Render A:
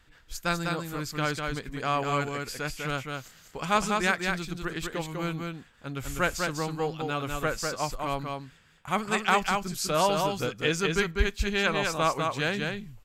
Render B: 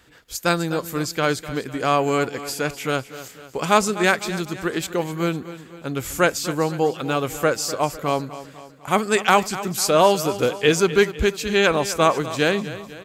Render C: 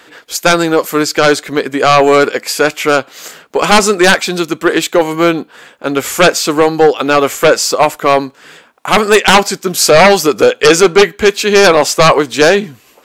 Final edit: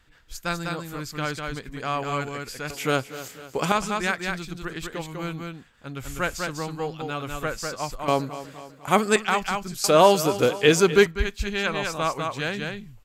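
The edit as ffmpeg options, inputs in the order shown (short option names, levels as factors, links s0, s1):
-filter_complex "[1:a]asplit=3[s0][s1][s2];[0:a]asplit=4[s3][s4][s5][s6];[s3]atrim=end=2.702[s7];[s0]atrim=start=2.698:end=3.722[s8];[s4]atrim=start=3.718:end=8.082[s9];[s1]atrim=start=8.078:end=9.162[s10];[s5]atrim=start=9.158:end=9.842[s11];[s2]atrim=start=9.838:end=11.062[s12];[s6]atrim=start=11.058[s13];[s7][s8]acrossfade=d=0.004:c1=hsin:c2=hsin[s14];[s14][s9]acrossfade=d=0.004:c1=hsin:c2=hsin[s15];[s15][s10]acrossfade=d=0.004:c1=hsin:c2=hsin[s16];[s16][s11]acrossfade=d=0.004:c1=hsin:c2=hsin[s17];[s17][s12]acrossfade=d=0.004:c1=hsin:c2=hsin[s18];[s18][s13]acrossfade=d=0.004:c1=hsin:c2=hsin"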